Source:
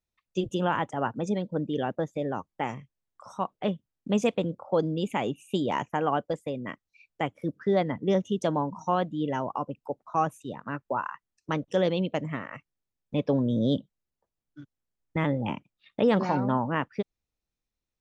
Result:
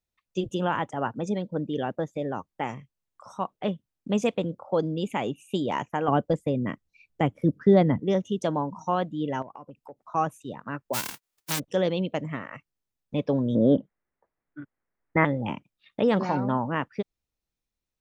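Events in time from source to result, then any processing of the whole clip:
6.08–8 low shelf 410 Hz +11.5 dB
9.42–9.99 compressor 5:1, threshold -40 dBFS
10.93–11.58 spectral whitening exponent 0.1
13.55–15.25 EQ curve 120 Hz 0 dB, 350 Hz +7 dB, 2000 Hz +11 dB, 4800 Hz -25 dB

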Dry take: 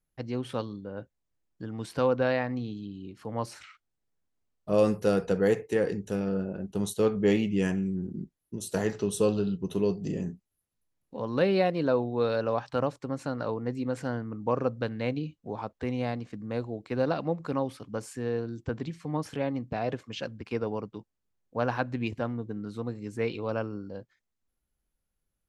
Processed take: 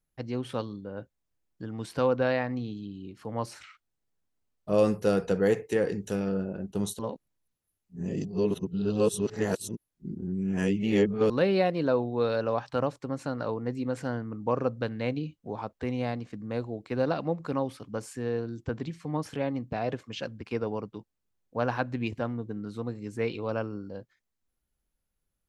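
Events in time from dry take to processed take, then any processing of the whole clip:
5.1–6.32 mismatched tape noise reduction encoder only
6.99–11.3 reverse

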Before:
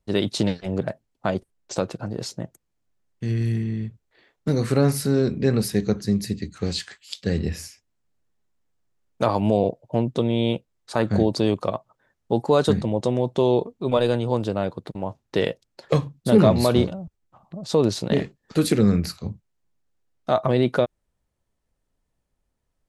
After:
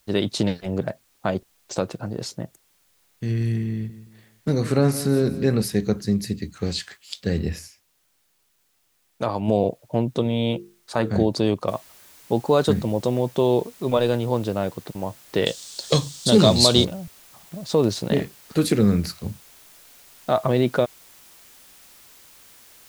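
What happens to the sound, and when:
3.72–5.62 feedback echo 0.172 s, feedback 35%, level -14 dB
7.59–9.48 gain -4 dB
10.23–11.16 notches 50/100/150/200/250/300/350/400/450 Hz
11.68 noise floor step -64 dB -50 dB
15.46–16.85 band shelf 5300 Hz +15.5 dB

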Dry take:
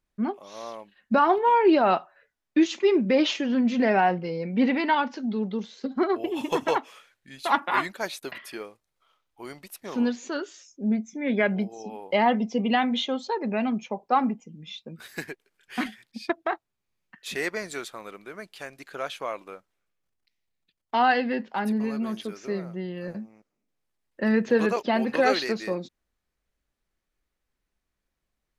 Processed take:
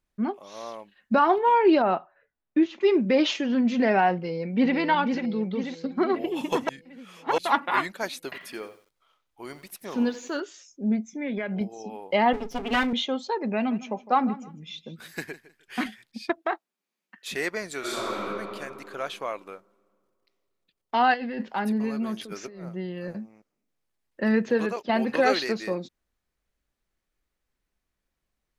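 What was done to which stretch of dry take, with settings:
1.82–2.81 tape spacing loss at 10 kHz 31 dB
4.15–4.76 echo throw 0.49 s, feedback 60%, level -6 dB
6.69–7.38 reverse
8.22–10.4 lo-fi delay 89 ms, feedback 35%, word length 9-bit, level -13 dB
11.09–11.61 compressor, threshold -26 dBFS
12.33–12.93 minimum comb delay 7.2 ms
13.55–15.8 feedback echo 0.157 s, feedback 24%, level -17 dB
16.38–17.28 brick-wall FIR high-pass 170 Hz
17.79–18.21 reverb throw, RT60 2.5 s, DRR -10.5 dB
21.14–21.54 negative-ratio compressor -32 dBFS
22.21–22.69 negative-ratio compressor -39 dBFS
24.35–24.89 fade out, to -8.5 dB

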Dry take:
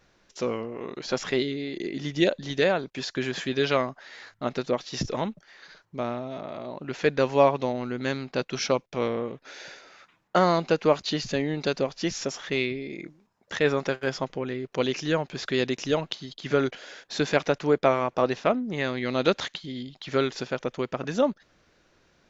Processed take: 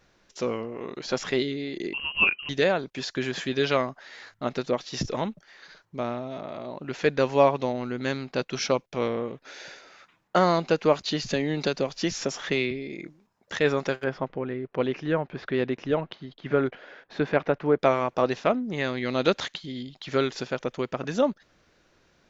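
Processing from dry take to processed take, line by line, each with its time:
1.93–2.49 inverted band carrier 3000 Hz
11.3–12.71 three-band squash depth 70%
14.04–17.79 LPF 2000 Hz

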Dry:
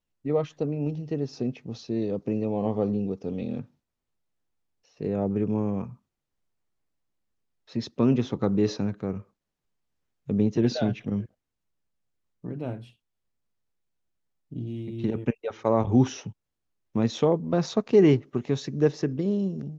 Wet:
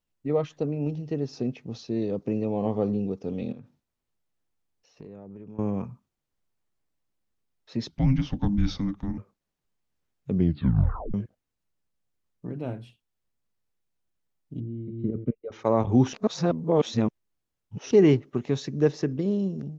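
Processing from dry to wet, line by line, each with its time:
3.52–5.59 compressor 12:1, threshold -39 dBFS
7.88–9.18 frequency shift -400 Hz
10.3 tape stop 0.84 s
14.6–15.52 running mean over 51 samples
16.13–17.91 reverse

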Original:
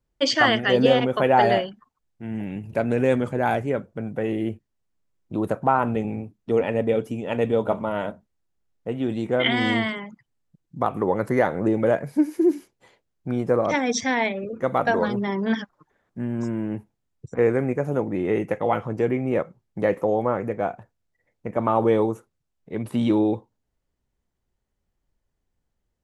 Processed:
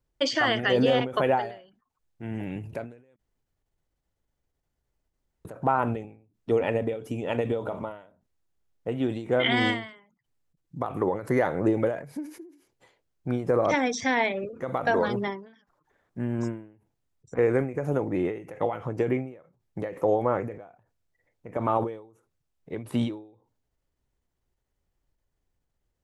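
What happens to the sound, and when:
3.16–5.45 room tone
whole clip: bell 210 Hz -7 dB 0.27 oct; limiter -12.5 dBFS; ending taper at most 110 dB/s

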